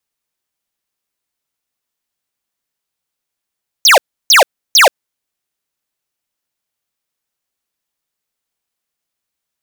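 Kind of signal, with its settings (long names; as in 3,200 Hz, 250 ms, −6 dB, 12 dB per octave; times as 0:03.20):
repeated falling chirps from 6,800 Hz, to 470 Hz, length 0.13 s square, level −6 dB, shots 3, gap 0.32 s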